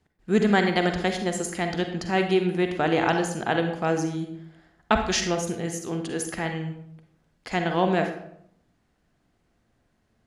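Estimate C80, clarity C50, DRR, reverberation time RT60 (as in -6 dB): 10.0 dB, 6.5 dB, 5.0 dB, 0.75 s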